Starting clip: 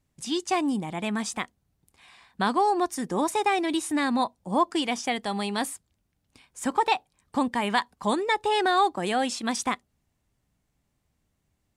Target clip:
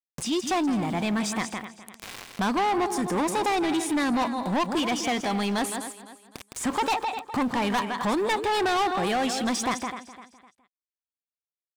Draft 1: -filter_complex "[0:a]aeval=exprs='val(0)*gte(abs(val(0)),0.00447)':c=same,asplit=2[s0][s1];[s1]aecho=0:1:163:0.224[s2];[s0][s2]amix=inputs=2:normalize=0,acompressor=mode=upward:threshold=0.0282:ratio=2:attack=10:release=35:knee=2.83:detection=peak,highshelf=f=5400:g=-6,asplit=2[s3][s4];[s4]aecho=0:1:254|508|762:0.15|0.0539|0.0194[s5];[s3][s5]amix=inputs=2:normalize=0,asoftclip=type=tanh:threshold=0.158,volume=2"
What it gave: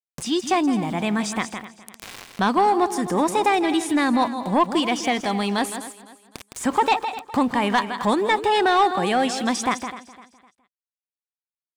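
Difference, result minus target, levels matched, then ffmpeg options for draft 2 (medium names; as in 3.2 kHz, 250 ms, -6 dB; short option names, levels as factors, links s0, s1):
saturation: distortion -12 dB
-filter_complex "[0:a]aeval=exprs='val(0)*gte(abs(val(0)),0.00447)':c=same,asplit=2[s0][s1];[s1]aecho=0:1:163:0.224[s2];[s0][s2]amix=inputs=2:normalize=0,acompressor=mode=upward:threshold=0.0282:ratio=2:attack=10:release=35:knee=2.83:detection=peak,highshelf=f=5400:g=-6,asplit=2[s3][s4];[s4]aecho=0:1:254|508|762:0.15|0.0539|0.0194[s5];[s3][s5]amix=inputs=2:normalize=0,asoftclip=type=tanh:threshold=0.0422,volume=2"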